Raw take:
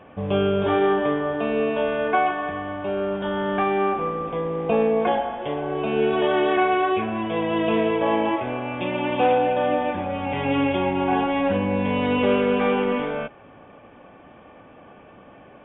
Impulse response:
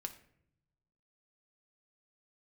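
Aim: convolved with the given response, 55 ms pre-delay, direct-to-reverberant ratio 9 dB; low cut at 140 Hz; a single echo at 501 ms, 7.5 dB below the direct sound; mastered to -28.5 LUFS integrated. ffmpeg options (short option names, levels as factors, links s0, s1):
-filter_complex "[0:a]highpass=140,aecho=1:1:501:0.422,asplit=2[s0][s1];[1:a]atrim=start_sample=2205,adelay=55[s2];[s1][s2]afir=irnorm=-1:irlink=0,volume=0.473[s3];[s0][s3]amix=inputs=2:normalize=0,volume=0.501"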